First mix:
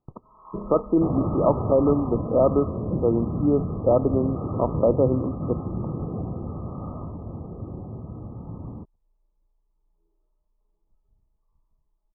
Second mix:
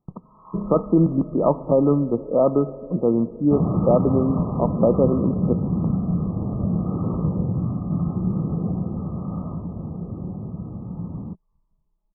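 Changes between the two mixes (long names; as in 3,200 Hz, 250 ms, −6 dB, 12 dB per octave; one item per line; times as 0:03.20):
speech: send +6.0 dB
second sound: entry +2.50 s
master: add parametric band 180 Hz +11 dB 0.59 octaves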